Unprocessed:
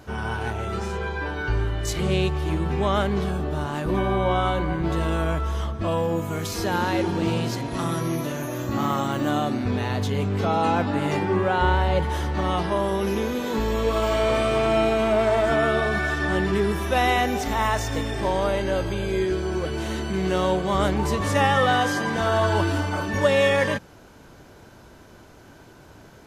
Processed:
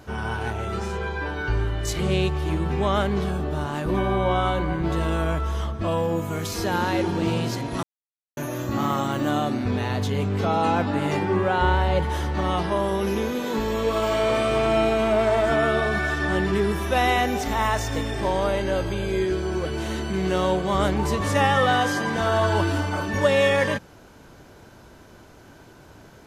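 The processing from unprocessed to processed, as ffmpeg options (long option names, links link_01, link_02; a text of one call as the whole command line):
ffmpeg -i in.wav -filter_complex "[0:a]asettb=1/sr,asplit=3[link_01][link_02][link_03];[link_01]atrim=end=13.294[link_04];[link_02]atrim=start=13.29:end=14.49,asetpts=PTS-STARTPTS,afade=type=in:duration=0.004:curve=qsin,afade=type=out:start_time=1.196:duration=0.004:curve=qsin,equalizer=frequency=65:width_type=o:width=0.52:gain=-12[link_05];[link_03]atrim=start=14.486[link_06];[link_04][link_05]acrossfade=duration=0.004:curve1=hsin:curve2=qsin[link_07];[link_07][link_06]acrossfade=duration=0.004:curve1=qsin:curve2=hsin,asplit=3[link_08][link_09][link_10];[link_08]atrim=end=7.83,asetpts=PTS-STARTPTS,afade=type=out:start_time=7.826:duration=0.004:curve=hsin[link_11];[link_09]atrim=start=7.83:end=8.37,asetpts=PTS-STARTPTS,volume=0[link_12];[link_10]atrim=start=8.37,asetpts=PTS-STARTPTS,afade=type=in:duration=0.004:curve=hsin[link_13];[link_11][link_12][link_13]concat=n=3:v=0:a=1" out.wav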